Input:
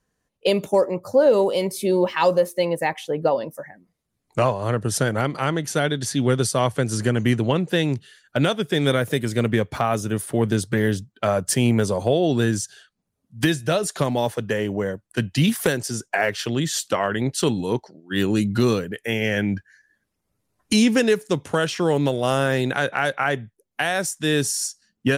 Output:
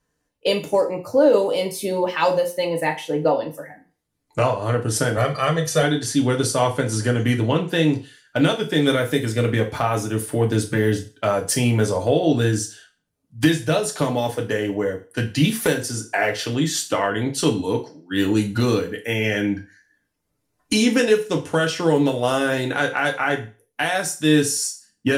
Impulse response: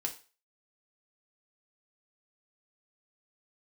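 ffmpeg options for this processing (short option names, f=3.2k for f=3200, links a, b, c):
-filter_complex "[0:a]asettb=1/sr,asplit=3[a][b][c];[a]atrim=end=5.174[d];[b]atrim=start=5.17:end=5.83,asetpts=PTS-STARTPTS,afade=t=in:d=0.004:c=qsin,afade=t=out:st=0.656:d=0.004:c=qsin,aecho=1:1:1.7:0.83,atrim=end_sample=29106[e];[c]atrim=start=5.826[f];[d][e]acrossfade=d=0.004:c1=hsin:c2=qsin[g];[g][f]acrossfade=d=0.004:c1=qsin:c2=hsin[h];[1:a]atrim=start_sample=2205[i];[h][i]afir=irnorm=-1:irlink=0"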